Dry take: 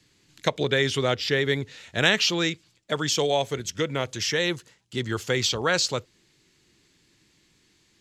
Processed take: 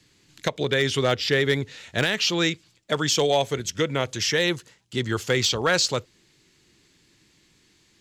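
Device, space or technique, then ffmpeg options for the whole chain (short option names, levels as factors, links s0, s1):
limiter into clipper: -af "alimiter=limit=0.299:level=0:latency=1:release=344,asoftclip=type=hard:threshold=0.188,volume=1.33"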